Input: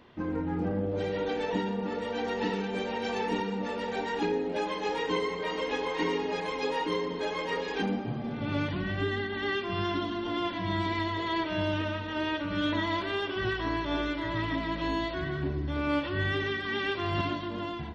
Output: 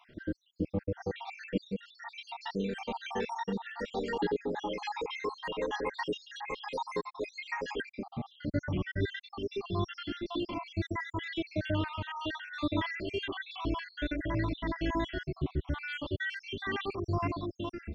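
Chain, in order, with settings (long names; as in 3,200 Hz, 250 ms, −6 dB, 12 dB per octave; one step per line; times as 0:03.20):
time-frequency cells dropped at random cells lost 69%
low-shelf EQ 64 Hz +9 dB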